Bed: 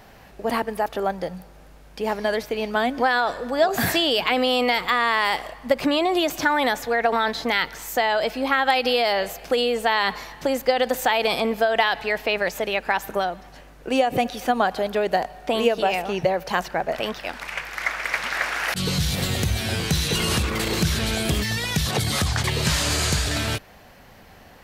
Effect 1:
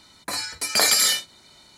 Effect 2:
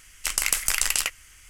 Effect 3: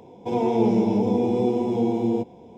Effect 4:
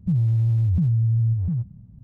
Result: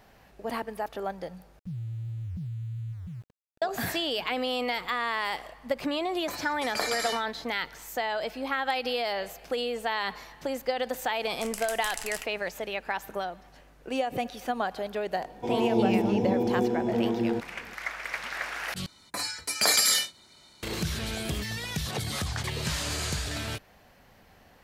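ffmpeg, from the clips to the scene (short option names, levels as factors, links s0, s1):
-filter_complex "[1:a]asplit=2[s0][s1];[0:a]volume=0.355[s2];[4:a]aeval=exprs='val(0)*gte(abs(val(0)),0.015)':c=same[s3];[s0]lowpass=f=1800:p=1[s4];[s2]asplit=3[s5][s6][s7];[s5]atrim=end=1.594[s8];[s3]atrim=end=2.03,asetpts=PTS-STARTPTS,volume=0.168[s9];[s6]atrim=start=3.616:end=18.864[s10];[s1]atrim=end=1.77,asetpts=PTS-STARTPTS,volume=0.631[s11];[s7]atrim=start=20.626[s12];[s4]atrim=end=1.77,asetpts=PTS-STARTPTS,volume=0.531,afade=t=in:d=0.004:c=hsin,afade=t=out:st=1.766:d=0.004:c=hsin,adelay=6000[s13];[2:a]atrim=end=1.49,asetpts=PTS-STARTPTS,volume=0.2,afade=t=in:d=0.004:c=hsin,afade=t=out:st=1.486:d=0.004:c=hsin,adelay=11160[s14];[3:a]atrim=end=2.57,asetpts=PTS-STARTPTS,volume=0.596,afade=t=in:d=0.004:c=hsin,afade=t=out:st=2.566:d=0.004:c=hsin,adelay=15170[s15];[s8][s9]acrossfade=d=0.004:c1=hsin:c2=hsin[s16];[s16][s10]acrossfade=d=0.004:c1=hsin:c2=hsin[s17];[s17][s11]acrossfade=d=0.004:c1=hsin:c2=hsin[s18];[s18][s12]acrossfade=d=0.004:c1=hsin:c2=hsin[s19];[s19][s13][s14][s15]amix=inputs=4:normalize=0"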